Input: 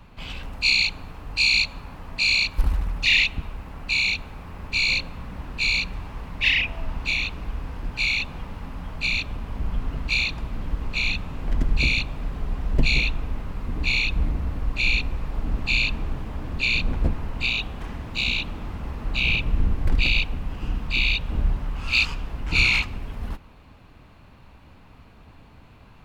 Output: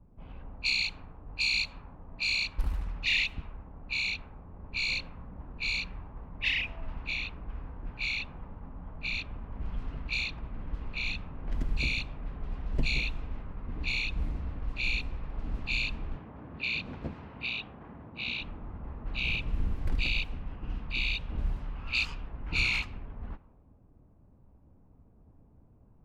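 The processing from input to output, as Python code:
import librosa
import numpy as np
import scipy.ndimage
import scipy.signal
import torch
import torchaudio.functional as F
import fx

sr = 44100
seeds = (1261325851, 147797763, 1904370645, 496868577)

y = fx.env_lowpass(x, sr, base_hz=460.0, full_db=-17.0)
y = fx.bandpass_edges(y, sr, low_hz=110.0, high_hz=4900.0, at=(16.17, 18.41))
y = y * 10.0 ** (-9.0 / 20.0)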